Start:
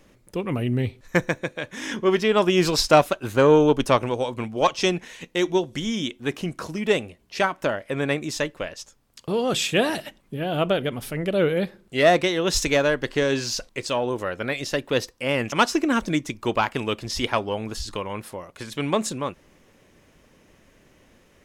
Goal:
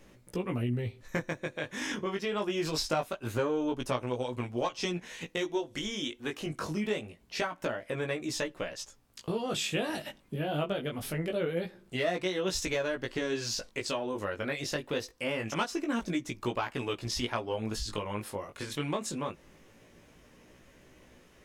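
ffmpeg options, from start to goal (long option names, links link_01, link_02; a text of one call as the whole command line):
ffmpeg -i in.wav -filter_complex "[0:a]asettb=1/sr,asplit=3[link_01][link_02][link_03];[link_01]atrim=end=5.464[link_04];[link_02]atrim=start=5.46:end=6.47,asetpts=PTS-STARTPTS,afade=type=in:duration=0.004:curve=qsin,afade=type=out:start_time=1.006:duration=0.004:curve=qsin,equalizer=frequency=160:width_type=o:width=0.95:gain=-10[link_05];[link_03]atrim=start=6.466[link_06];[link_04][link_05]acrossfade=duration=0.004:curve1=hsin:curve2=qsin[link_07];[link_07][link_06]acrossfade=duration=0.004:curve1=qsin:curve2=hsin,acompressor=threshold=-30dB:ratio=3,flanger=delay=16:depth=4.1:speed=0.24,volume=1.5dB" out.wav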